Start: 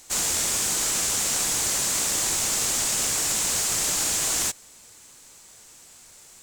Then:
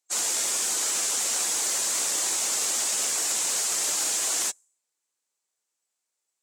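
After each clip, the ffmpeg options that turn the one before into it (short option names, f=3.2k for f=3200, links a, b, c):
-af "afftdn=nr=32:nf=-37,highpass=360,volume=-1dB"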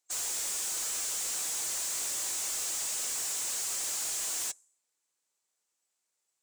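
-af "volume=33dB,asoftclip=hard,volume=-33dB"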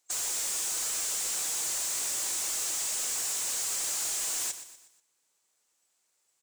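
-filter_complex "[0:a]acompressor=threshold=-41dB:ratio=3,asplit=2[a][b];[b]aecho=0:1:121|242|363|484:0.251|0.111|0.0486|0.0214[c];[a][c]amix=inputs=2:normalize=0,volume=7dB"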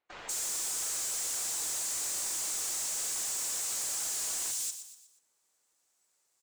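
-filter_complex "[0:a]acrossover=split=2900[a][b];[b]adelay=190[c];[a][c]amix=inputs=2:normalize=0,volume=31dB,asoftclip=hard,volume=-31dB"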